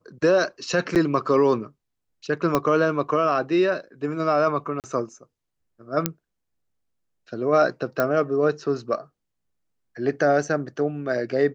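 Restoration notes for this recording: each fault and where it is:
0.95–0.96 s: dropout 7.9 ms
2.55 s: pop -7 dBFS
4.80–4.84 s: dropout 38 ms
6.06 s: pop -4 dBFS
8.00 s: pop -9 dBFS

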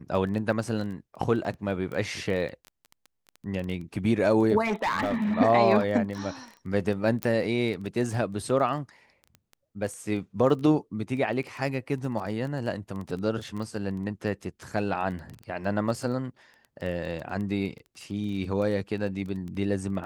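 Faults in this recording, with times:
crackle 13 per s -33 dBFS
4.64–5.34 s: clipped -22.5 dBFS
7.23 s: pop -12 dBFS

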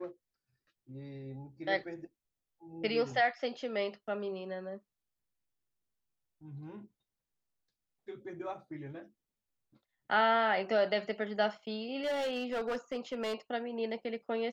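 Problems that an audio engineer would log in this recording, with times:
12.03–13.34 s: clipped -30.5 dBFS

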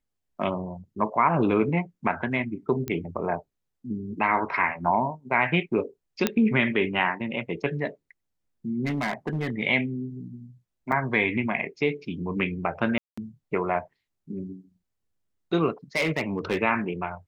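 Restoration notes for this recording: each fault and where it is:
2.88 s: pop -16 dBFS
6.27 s: pop -7 dBFS
8.85–9.50 s: clipped -23 dBFS
10.92 s: dropout 4.9 ms
12.98–13.18 s: dropout 195 ms
15.96–16.57 s: clipped -20 dBFS

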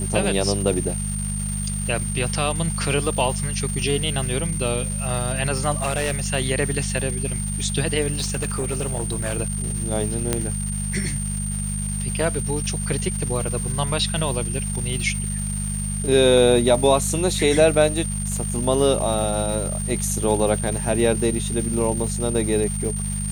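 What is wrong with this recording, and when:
crackle 580 per s -30 dBFS
hum 50 Hz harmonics 4 -27 dBFS
whine 8.8 kHz -29 dBFS
5.80–6.30 s: clipped -18.5 dBFS
8.11–9.38 s: clipped -20 dBFS
10.33 s: pop -5 dBFS

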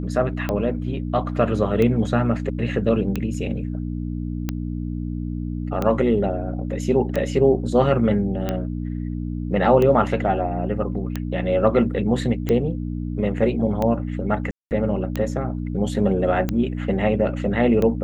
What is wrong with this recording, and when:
hum 60 Hz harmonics 5 -27 dBFS
tick 45 rpm -11 dBFS
14.51–14.71 s: dropout 199 ms

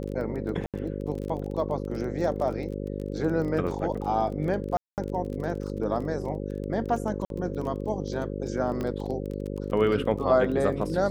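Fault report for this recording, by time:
buzz 50 Hz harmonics 11 -33 dBFS
crackle 22 per s -34 dBFS
0.66–0.74 s: dropout 77 ms
4.77–4.98 s: dropout 208 ms
7.25–7.30 s: dropout 52 ms
8.81 s: pop -19 dBFS

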